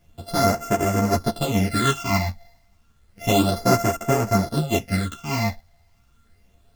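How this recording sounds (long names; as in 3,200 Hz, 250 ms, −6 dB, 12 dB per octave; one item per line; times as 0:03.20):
a buzz of ramps at a fixed pitch in blocks of 64 samples
phaser sweep stages 8, 0.31 Hz, lowest notch 390–3,900 Hz
a quantiser's noise floor 12 bits, dither none
a shimmering, thickened sound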